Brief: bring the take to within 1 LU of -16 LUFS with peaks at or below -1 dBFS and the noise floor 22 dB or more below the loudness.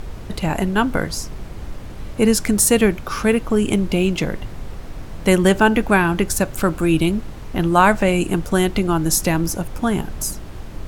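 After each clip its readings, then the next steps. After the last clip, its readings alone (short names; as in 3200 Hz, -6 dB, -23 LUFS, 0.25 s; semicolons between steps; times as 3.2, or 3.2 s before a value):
noise floor -34 dBFS; noise floor target -41 dBFS; loudness -18.5 LUFS; peak -1.0 dBFS; loudness target -16.0 LUFS
-> noise print and reduce 7 dB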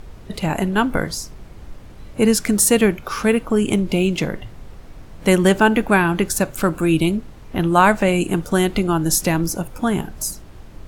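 noise floor -40 dBFS; noise floor target -41 dBFS
-> noise print and reduce 6 dB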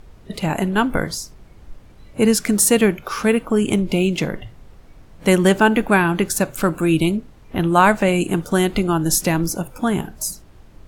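noise floor -46 dBFS; loudness -18.5 LUFS; peak -1.0 dBFS; loudness target -16.0 LUFS
-> gain +2.5 dB; limiter -1 dBFS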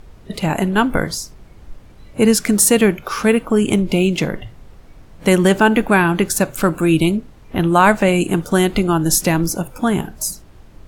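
loudness -16.5 LUFS; peak -1.0 dBFS; noise floor -43 dBFS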